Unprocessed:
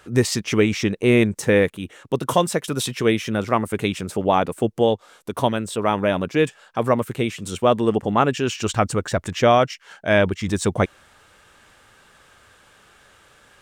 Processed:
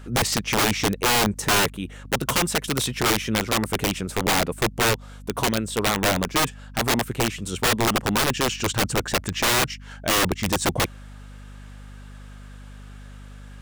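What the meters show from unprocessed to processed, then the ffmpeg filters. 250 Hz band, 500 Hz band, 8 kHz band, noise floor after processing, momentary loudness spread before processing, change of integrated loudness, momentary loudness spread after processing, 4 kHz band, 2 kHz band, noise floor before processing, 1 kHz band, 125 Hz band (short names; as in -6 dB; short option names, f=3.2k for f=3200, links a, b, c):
-4.5 dB, -7.0 dB, +6.5 dB, -41 dBFS, 7 LU, -1.5 dB, 6 LU, +6.0 dB, +2.0 dB, -54 dBFS, -2.0 dB, -3.0 dB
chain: -af "aeval=exprs='(mod(5.31*val(0)+1,2)-1)/5.31':c=same,aeval=exprs='val(0)+0.01*(sin(2*PI*50*n/s)+sin(2*PI*2*50*n/s)/2+sin(2*PI*3*50*n/s)/3+sin(2*PI*4*50*n/s)/4+sin(2*PI*5*50*n/s)/5)':c=same"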